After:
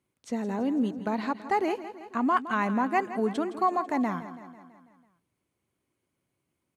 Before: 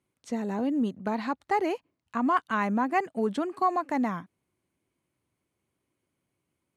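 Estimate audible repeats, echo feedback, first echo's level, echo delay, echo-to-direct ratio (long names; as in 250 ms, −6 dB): 5, 58%, −13.5 dB, 165 ms, −11.5 dB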